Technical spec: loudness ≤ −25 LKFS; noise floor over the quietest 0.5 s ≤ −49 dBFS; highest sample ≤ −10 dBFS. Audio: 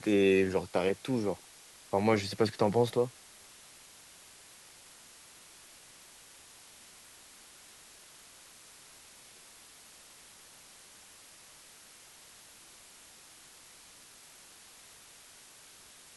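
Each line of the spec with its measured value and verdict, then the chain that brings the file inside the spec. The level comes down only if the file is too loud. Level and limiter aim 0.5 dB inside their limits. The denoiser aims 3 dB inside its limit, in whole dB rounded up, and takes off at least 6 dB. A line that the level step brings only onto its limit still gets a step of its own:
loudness −30.0 LKFS: in spec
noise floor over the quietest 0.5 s −55 dBFS: in spec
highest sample −13.0 dBFS: in spec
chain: no processing needed

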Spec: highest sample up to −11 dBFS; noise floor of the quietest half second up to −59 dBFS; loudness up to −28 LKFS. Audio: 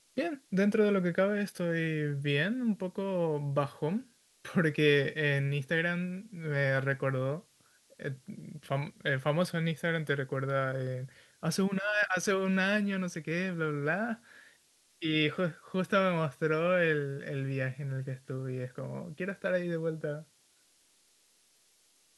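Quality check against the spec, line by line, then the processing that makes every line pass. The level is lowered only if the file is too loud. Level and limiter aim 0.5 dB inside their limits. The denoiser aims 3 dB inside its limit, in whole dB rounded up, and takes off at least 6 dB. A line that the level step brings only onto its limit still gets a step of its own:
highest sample −13.0 dBFS: in spec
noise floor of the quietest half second −67 dBFS: in spec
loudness −31.5 LKFS: in spec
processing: no processing needed

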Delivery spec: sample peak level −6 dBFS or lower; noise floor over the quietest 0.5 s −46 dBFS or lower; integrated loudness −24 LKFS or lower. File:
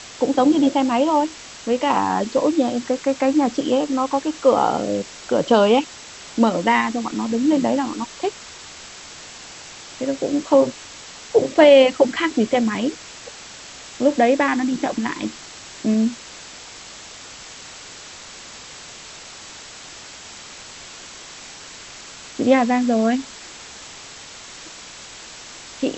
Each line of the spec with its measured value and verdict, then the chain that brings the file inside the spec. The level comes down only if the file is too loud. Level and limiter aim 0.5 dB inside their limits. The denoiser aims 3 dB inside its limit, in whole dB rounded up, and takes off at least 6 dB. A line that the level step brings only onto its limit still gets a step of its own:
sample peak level −2.0 dBFS: out of spec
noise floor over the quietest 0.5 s −39 dBFS: out of spec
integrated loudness −19.5 LKFS: out of spec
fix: broadband denoise 6 dB, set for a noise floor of −39 dBFS
level −5 dB

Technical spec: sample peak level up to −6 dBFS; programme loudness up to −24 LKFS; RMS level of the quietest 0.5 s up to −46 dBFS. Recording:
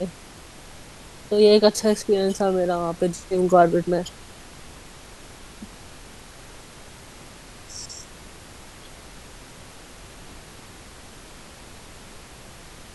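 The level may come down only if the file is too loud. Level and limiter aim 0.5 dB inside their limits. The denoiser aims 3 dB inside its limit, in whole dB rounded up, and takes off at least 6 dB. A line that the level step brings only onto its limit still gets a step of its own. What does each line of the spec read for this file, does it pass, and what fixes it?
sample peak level −3.0 dBFS: out of spec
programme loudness −20.5 LKFS: out of spec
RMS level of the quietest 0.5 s −44 dBFS: out of spec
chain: level −4 dB

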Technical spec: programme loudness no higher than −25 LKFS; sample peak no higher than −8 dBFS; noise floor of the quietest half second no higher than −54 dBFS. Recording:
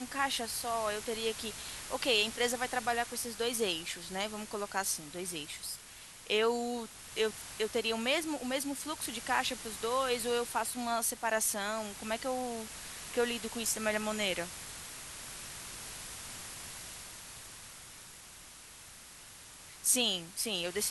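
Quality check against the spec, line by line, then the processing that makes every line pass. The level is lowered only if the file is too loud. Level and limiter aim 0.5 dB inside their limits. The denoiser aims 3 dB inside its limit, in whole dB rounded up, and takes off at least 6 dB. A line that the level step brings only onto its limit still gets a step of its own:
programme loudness −34.0 LKFS: in spec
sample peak −12.5 dBFS: in spec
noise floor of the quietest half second −52 dBFS: out of spec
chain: broadband denoise 6 dB, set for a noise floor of −52 dBFS

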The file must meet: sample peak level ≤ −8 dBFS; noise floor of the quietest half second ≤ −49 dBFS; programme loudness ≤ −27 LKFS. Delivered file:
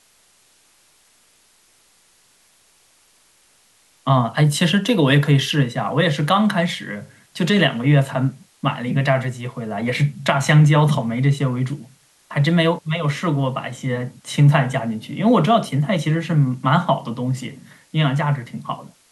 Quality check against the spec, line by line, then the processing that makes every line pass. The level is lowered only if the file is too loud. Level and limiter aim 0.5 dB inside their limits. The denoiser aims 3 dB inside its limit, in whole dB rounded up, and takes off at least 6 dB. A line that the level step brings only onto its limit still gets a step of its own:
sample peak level −3.5 dBFS: out of spec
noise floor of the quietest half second −57 dBFS: in spec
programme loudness −19.0 LKFS: out of spec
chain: level −8.5 dB

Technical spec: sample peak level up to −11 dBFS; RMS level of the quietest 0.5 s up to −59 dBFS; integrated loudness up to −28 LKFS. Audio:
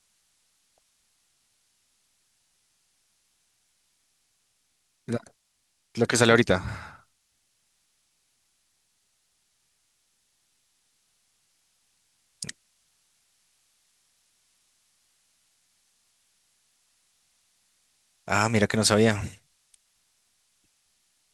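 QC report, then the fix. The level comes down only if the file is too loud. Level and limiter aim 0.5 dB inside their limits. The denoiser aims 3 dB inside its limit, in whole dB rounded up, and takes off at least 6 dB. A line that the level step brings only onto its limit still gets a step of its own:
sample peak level −3.5 dBFS: out of spec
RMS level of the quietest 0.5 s −73 dBFS: in spec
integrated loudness −24.5 LKFS: out of spec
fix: level −4 dB
brickwall limiter −11.5 dBFS

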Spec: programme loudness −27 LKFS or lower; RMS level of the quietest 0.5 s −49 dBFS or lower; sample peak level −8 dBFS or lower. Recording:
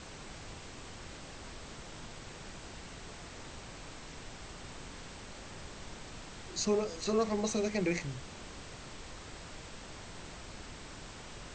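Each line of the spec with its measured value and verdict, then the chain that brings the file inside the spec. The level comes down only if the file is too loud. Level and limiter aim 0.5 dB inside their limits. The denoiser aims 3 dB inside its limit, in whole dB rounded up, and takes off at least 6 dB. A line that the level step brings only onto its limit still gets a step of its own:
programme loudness −40.0 LKFS: in spec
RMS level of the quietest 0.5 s −47 dBFS: out of spec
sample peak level −19.5 dBFS: in spec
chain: broadband denoise 6 dB, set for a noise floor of −47 dBFS

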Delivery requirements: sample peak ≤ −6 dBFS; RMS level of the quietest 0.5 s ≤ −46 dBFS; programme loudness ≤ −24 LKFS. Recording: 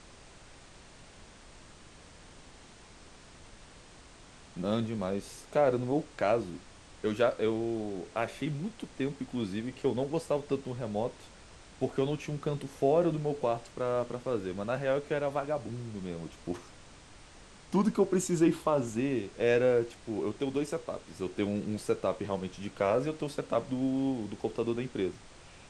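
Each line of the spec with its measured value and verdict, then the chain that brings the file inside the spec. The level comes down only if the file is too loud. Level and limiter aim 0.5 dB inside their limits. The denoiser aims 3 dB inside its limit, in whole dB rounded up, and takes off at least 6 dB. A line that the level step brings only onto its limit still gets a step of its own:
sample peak −14.5 dBFS: in spec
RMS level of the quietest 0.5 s −53 dBFS: in spec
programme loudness −32.0 LKFS: in spec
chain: no processing needed

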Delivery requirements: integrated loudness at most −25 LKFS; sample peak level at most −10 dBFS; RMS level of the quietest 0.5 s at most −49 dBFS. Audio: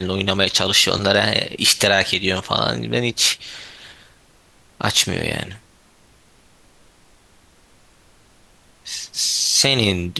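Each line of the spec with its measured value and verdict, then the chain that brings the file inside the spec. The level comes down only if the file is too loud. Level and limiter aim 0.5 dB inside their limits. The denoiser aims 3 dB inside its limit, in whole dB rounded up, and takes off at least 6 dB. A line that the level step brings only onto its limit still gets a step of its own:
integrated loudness −17.5 LKFS: out of spec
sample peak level −2.0 dBFS: out of spec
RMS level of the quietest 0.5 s −53 dBFS: in spec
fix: level −8 dB
brickwall limiter −10.5 dBFS

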